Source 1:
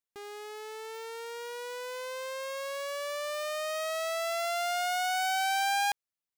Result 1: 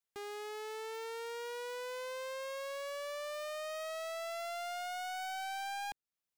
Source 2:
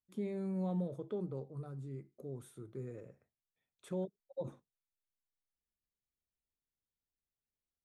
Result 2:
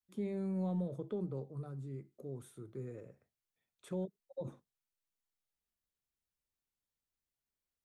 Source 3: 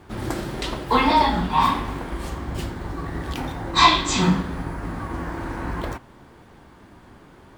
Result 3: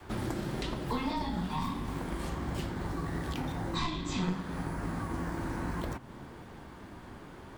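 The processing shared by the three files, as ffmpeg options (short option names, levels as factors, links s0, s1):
-filter_complex "[0:a]adynamicequalizer=threshold=0.0112:dfrequency=170:dqfactor=1:tfrequency=170:tqfactor=1:attack=5:release=100:ratio=0.375:range=3:mode=boostabove:tftype=bell,aeval=exprs='0.944*(cos(1*acos(clip(val(0)/0.944,-1,1)))-cos(1*PI/2))+0.376*(cos(2*acos(clip(val(0)/0.944,-1,1)))-cos(2*PI/2))+0.0237*(cos(4*acos(clip(val(0)/0.944,-1,1)))-cos(4*PI/2))+0.00596*(cos(6*acos(clip(val(0)/0.944,-1,1)))-cos(6*PI/2))':c=same,acrossover=split=370|4800[s0][s1][s2];[s0]acompressor=threshold=0.0178:ratio=4[s3];[s1]acompressor=threshold=0.01:ratio=4[s4];[s2]acompressor=threshold=0.00224:ratio=4[s5];[s3][s4][s5]amix=inputs=3:normalize=0"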